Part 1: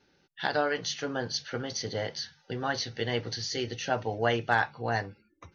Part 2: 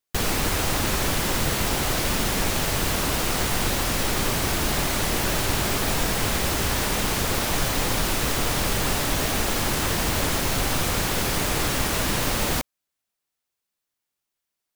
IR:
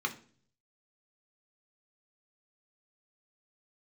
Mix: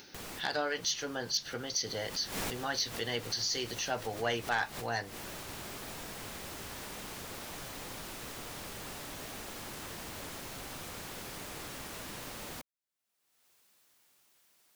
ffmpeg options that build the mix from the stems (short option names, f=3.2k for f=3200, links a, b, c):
-filter_complex "[0:a]aemphasis=mode=production:type=75kf,volume=-5dB,asplit=2[a][b];[1:a]volume=-10dB,afade=t=in:st=1.83:d=0.22:silence=0.354813,afade=t=out:st=4.48:d=0.63:silence=0.375837[c];[b]apad=whole_len=650485[d];[c][d]sidechaincompress=threshold=-47dB:ratio=8:attack=8.9:release=115[e];[a][e]amix=inputs=2:normalize=0,acompressor=mode=upward:threshold=-41dB:ratio=2.5,lowshelf=f=85:g=-10,asoftclip=type=tanh:threshold=-22dB"